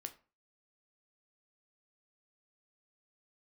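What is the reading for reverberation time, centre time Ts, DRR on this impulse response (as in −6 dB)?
0.35 s, 6 ms, 7.0 dB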